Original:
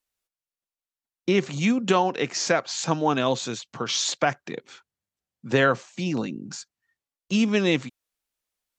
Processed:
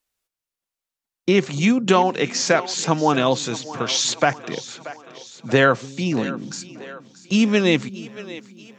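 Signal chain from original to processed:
echo with a time of its own for lows and highs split 310 Hz, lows 291 ms, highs 632 ms, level −16 dB
level +4.5 dB

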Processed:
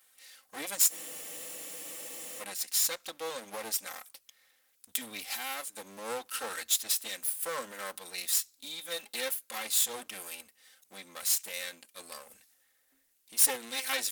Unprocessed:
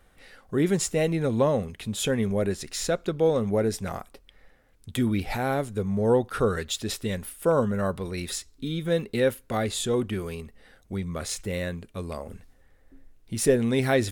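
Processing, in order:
lower of the sound and its delayed copy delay 3.8 ms
first difference
frozen spectrum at 0:00.94, 1.47 s
level +7 dB

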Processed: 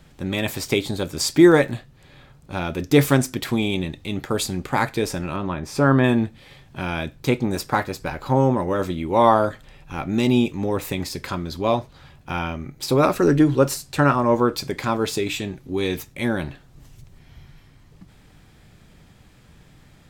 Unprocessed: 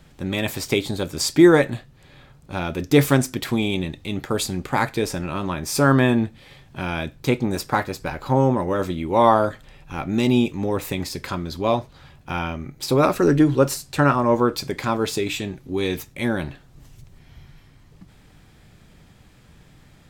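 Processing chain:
0:01.26–0:01.70: surface crackle 120 per second −31 dBFS
0:05.36–0:06.04: low-pass filter 2,100 Hz 6 dB per octave

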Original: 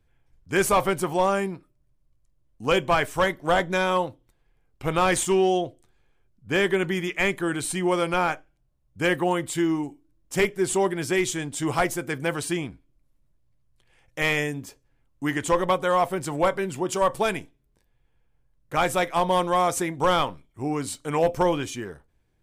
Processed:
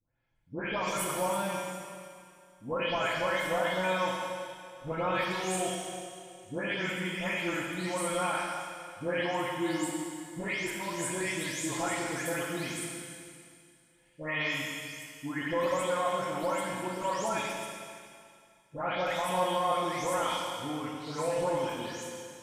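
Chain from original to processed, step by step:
every frequency bin delayed by itself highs late, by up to 350 ms
low-shelf EQ 230 Hz −8 dB
brickwall limiter −17.5 dBFS, peak gain reduction 8 dB
notch comb filter 390 Hz
four-comb reverb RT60 2.3 s, combs from 29 ms, DRR −1 dB
level −5.5 dB

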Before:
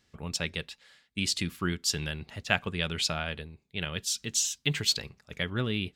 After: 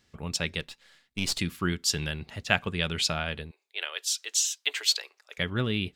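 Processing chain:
0:00.60–0:01.39: gain on one half-wave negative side −7 dB
0:03.51–0:05.38: Bessel high-pass filter 710 Hz, order 8
level +2 dB

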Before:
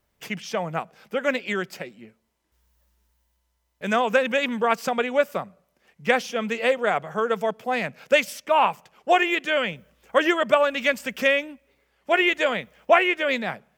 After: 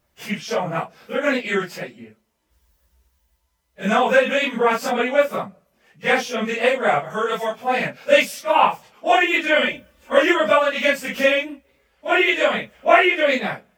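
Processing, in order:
random phases in long frames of 100 ms
0:07.10–0:07.56: tilt shelving filter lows −5.5 dB, about 1,400 Hz
0:09.33–0:10.18: comb filter 3.4 ms, depth 72%
level +4 dB

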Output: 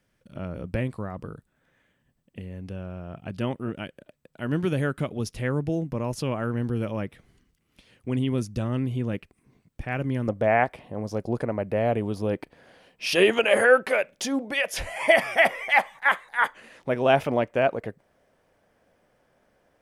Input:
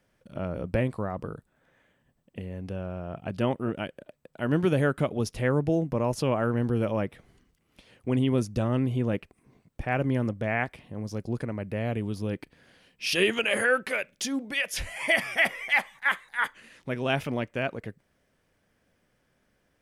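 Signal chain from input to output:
parametric band 680 Hz −4.5 dB 1.8 octaves, from 0:10.28 +10.5 dB

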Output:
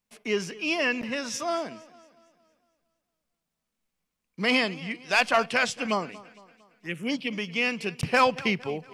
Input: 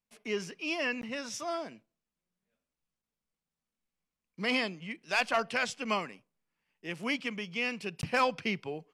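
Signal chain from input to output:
0:05.86–0:07.33: phaser swept by the level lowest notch 420 Hz, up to 2,600 Hz, full sweep at −26.5 dBFS
feedback echo with a swinging delay time 229 ms, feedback 48%, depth 84 cents, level −20 dB
level +6.5 dB

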